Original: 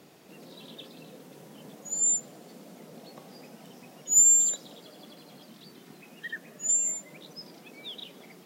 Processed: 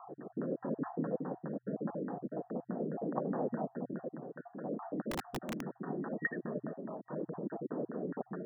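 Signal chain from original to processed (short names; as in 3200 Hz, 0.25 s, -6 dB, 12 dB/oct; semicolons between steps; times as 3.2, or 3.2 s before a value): random spectral dropouts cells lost 29%; rotary speaker horn 0.8 Hz; in parallel at +1 dB: compressor, threshold -46 dBFS, peak gain reduction 22 dB; on the sum: LFO low-pass saw down 4.8 Hz 240–1500 Hz; FFT band-pass 120–1900 Hz; 5.11–5.63 wrapped overs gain 37.5 dB; gain +6.5 dB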